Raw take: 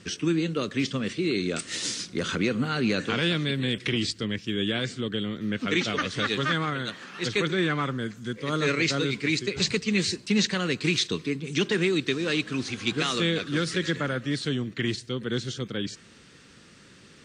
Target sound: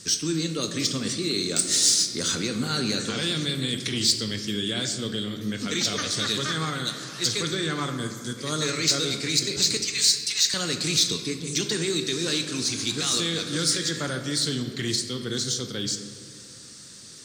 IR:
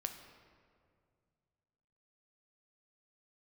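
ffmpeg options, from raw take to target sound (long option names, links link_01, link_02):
-filter_complex "[0:a]asettb=1/sr,asplit=3[link_01][link_02][link_03];[link_01]atrim=end=9.774[link_04];[link_02]atrim=start=9.77:end=10.54,asetpts=PTS-STARTPTS,afade=type=in:duration=0.004:curve=qsin,afade=type=out:start_time=0.766:duration=0.004:curve=qsin,highpass=frequency=1100:width=0.5412,highpass=frequency=1100:width=1.3066[link_05];[link_03]atrim=start=10.536[link_06];[link_04][link_05]acrossfade=duration=0.004:curve1=hsin:curve2=qsin[link_07];[link_07][link_06]acrossfade=duration=0.004:curve1=qsin:curve2=hsin,alimiter=limit=-18.5dB:level=0:latency=1:release=18,aexciter=amount=2.7:drive=10:freq=3900[link_08];[1:a]atrim=start_sample=2205[link_09];[link_08][link_09]afir=irnorm=-1:irlink=0"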